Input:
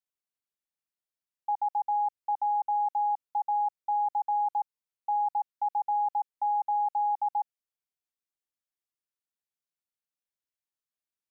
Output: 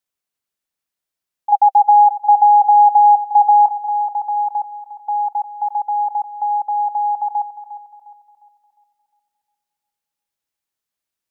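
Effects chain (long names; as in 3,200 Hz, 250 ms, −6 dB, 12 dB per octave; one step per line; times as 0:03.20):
0:01.52–0:03.66: parametric band 790 Hz +12.5 dB 0.26 octaves
feedback echo with a high-pass in the loop 355 ms, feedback 50%, high-pass 740 Hz, level −11 dB
level +8.5 dB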